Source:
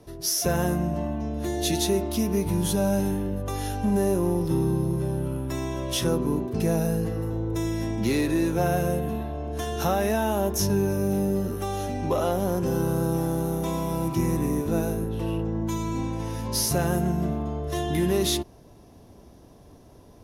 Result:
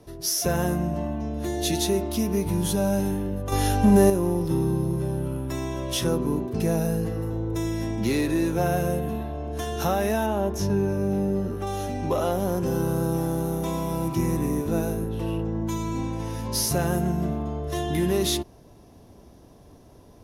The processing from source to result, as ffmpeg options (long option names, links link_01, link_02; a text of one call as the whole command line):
ffmpeg -i in.wav -filter_complex "[0:a]asettb=1/sr,asplit=3[link_01][link_02][link_03];[link_01]atrim=end=10.264[link_04];[link_02]atrim=start=10.26:end=11.67,asetpts=PTS-STARTPTS,afade=type=in:duration=0.004:curve=qsin,afade=type=out:start_time=1.406:duration=0.004:curve=qsin,lowpass=frequency=2700:poles=1[link_05];[link_03]atrim=start=11.666[link_06];[link_04][link_05]acrossfade=duration=0.004:curve1=hsin:curve2=qsin[link_07];[link_07][link_06]acrossfade=duration=0.004:curve1=qsin:curve2=hsin,asplit=3[link_08][link_09][link_10];[link_08]atrim=end=3.522[link_11];[link_09]atrim=start=3.518:end=4.102,asetpts=PTS-STARTPTS,volume=7dB[link_12];[link_10]atrim=start=4.098[link_13];[link_11][link_12]acrossfade=duration=0.004:curve1=hsin:curve2=hsin[link_14];[link_14][link_13]acrossfade=duration=0.004:curve1=hsin:curve2=hsin" out.wav